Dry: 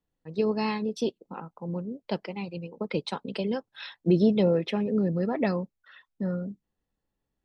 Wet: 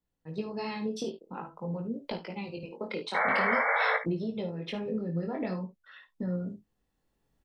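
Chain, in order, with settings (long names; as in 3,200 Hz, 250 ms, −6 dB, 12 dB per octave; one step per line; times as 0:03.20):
camcorder AGC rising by 6.3 dB per second
0:02.63–0:03.27: high-pass filter 260 Hz 12 dB per octave
downward compressor 6 to 1, threshold −27 dBFS, peak gain reduction 11 dB
0:03.14–0:03.97: sound drawn into the spectrogram noise 440–2,300 Hz −24 dBFS
chorus effect 0.48 Hz, delay 17 ms, depth 6.3 ms
ambience of single reflections 54 ms −11.5 dB, 72 ms −16.5 dB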